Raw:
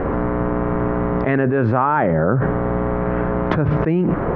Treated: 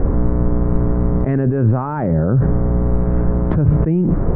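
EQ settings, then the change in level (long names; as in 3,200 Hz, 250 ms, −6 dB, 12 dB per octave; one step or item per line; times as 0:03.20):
spectral tilt −4.5 dB per octave
−8.0 dB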